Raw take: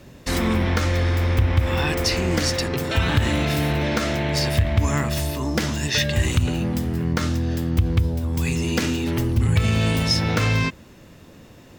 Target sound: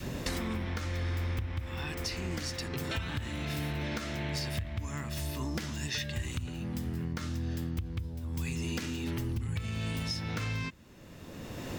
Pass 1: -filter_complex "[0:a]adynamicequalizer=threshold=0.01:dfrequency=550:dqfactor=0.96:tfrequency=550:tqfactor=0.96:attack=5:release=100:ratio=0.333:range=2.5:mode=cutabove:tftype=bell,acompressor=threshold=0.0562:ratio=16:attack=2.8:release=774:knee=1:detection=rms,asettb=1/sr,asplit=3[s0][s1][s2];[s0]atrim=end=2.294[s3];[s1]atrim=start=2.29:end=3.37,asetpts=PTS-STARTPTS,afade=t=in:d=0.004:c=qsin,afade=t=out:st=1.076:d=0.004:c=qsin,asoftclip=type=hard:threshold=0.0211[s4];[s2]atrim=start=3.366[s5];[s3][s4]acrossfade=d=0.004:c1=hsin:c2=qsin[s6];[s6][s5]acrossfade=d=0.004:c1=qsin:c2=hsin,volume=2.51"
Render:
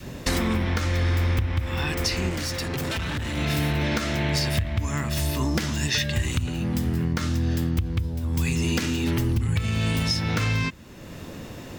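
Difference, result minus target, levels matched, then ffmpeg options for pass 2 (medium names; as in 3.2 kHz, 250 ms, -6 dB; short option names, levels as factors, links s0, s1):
compression: peak gain reduction -10.5 dB
-filter_complex "[0:a]adynamicequalizer=threshold=0.01:dfrequency=550:dqfactor=0.96:tfrequency=550:tqfactor=0.96:attack=5:release=100:ratio=0.333:range=2.5:mode=cutabove:tftype=bell,acompressor=threshold=0.0158:ratio=16:attack=2.8:release=774:knee=1:detection=rms,asettb=1/sr,asplit=3[s0][s1][s2];[s0]atrim=end=2.294[s3];[s1]atrim=start=2.29:end=3.37,asetpts=PTS-STARTPTS,afade=t=in:d=0.004:c=qsin,afade=t=out:st=1.076:d=0.004:c=qsin,asoftclip=type=hard:threshold=0.0211[s4];[s2]atrim=start=3.366[s5];[s3][s4]acrossfade=d=0.004:c1=hsin:c2=qsin[s6];[s6][s5]acrossfade=d=0.004:c1=qsin:c2=hsin,volume=2.51"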